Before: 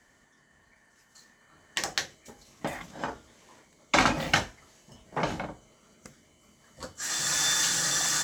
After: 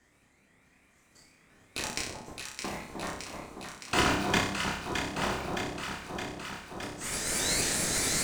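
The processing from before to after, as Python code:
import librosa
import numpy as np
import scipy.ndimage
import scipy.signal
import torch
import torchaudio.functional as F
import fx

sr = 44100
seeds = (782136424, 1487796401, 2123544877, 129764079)

p1 = fx.pitch_ramps(x, sr, semitones=5.5, every_ms=224)
p2 = fx.room_flutter(p1, sr, wall_m=5.2, rt60_s=0.58)
p3 = fx.sample_hold(p2, sr, seeds[0], rate_hz=1100.0, jitter_pct=0)
p4 = p2 + (p3 * 10.0 ** (-7.0 / 20.0))
p5 = fx.echo_alternate(p4, sr, ms=308, hz=1100.0, feedback_pct=84, wet_db=-4.0)
y = p5 * 10.0 ** (-5.5 / 20.0)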